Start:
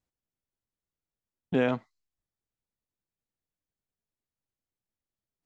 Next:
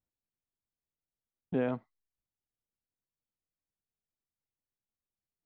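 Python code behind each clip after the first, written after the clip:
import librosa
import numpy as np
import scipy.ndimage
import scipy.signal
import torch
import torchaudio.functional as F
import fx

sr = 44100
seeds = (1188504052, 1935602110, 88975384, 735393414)

y = fx.lowpass(x, sr, hz=1100.0, slope=6)
y = y * 10.0 ** (-4.5 / 20.0)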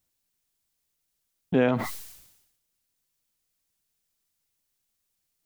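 y = fx.high_shelf(x, sr, hz=2600.0, db=11.0)
y = fx.sustainer(y, sr, db_per_s=62.0)
y = y * 10.0 ** (8.0 / 20.0)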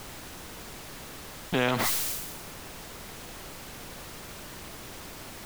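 y = fx.dmg_noise_colour(x, sr, seeds[0], colour='pink', level_db=-58.0)
y = fx.spectral_comp(y, sr, ratio=2.0)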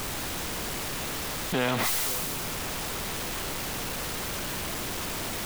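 y = x + 0.5 * 10.0 ** (-25.5 / 20.0) * np.sign(x)
y = fx.echo_stepped(y, sr, ms=173, hz=2800.0, octaves=-1.4, feedback_pct=70, wet_db=-6.0)
y = y * 10.0 ** (-3.5 / 20.0)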